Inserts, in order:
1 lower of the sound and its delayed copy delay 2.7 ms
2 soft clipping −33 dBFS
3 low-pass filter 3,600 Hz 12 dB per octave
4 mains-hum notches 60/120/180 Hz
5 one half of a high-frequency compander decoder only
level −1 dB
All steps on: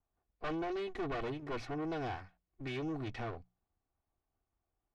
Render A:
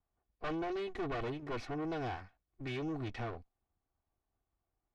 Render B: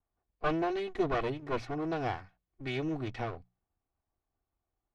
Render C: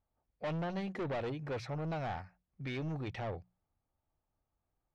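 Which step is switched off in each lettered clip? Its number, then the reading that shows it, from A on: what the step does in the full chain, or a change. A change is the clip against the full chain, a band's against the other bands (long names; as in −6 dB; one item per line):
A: 4, change in crest factor −2.0 dB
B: 2, distortion level −8 dB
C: 1, 125 Hz band +5.5 dB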